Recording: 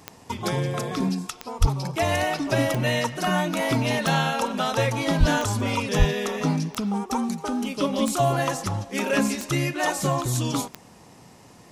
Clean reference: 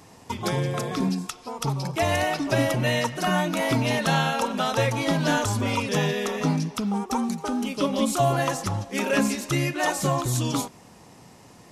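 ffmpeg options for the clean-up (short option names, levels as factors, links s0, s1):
-filter_complex "[0:a]adeclick=t=4,asplit=3[s0][s1][s2];[s0]afade=t=out:st=1.6:d=0.02[s3];[s1]highpass=f=140:w=0.5412,highpass=f=140:w=1.3066,afade=t=in:st=1.6:d=0.02,afade=t=out:st=1.72:d=0.02[s4];[s2]afade=t=in:st=1.72:d=0.02[s5];[s3][s4][s5]amix=inputs=3:normalize=0,asplit=3[s6][s7][s8];[s6]afade=t=out:st=5.19:d=0.02[s9];[s7]highpass=f=140:w=0.5412,highpass=f=140:w=1.3066,afade=t=in:st=5.19:d=0.02,afade=t=out:st=5.31:d=0.02[s10];[s8]afade=t=in:st=5.31:d=0.02[s11];[s9][s10][s11]amix=inputs=3:normalize=0,asplit=3[s12][s13][s14];[s12]afade=t=out:st=5.98:d=0.02[s15];[s13]highpass=f=140:w=0.5412,highpass=f=140:w=1.3066,afade=t=in:st=5.98:d=0.02,afade=t=out:st=6.1:d=0.02[s16];[s14]afade=t=in:st=6.1:d=0.02[s17];[s15][s16][s17]amix=inputs=3:normalize=0"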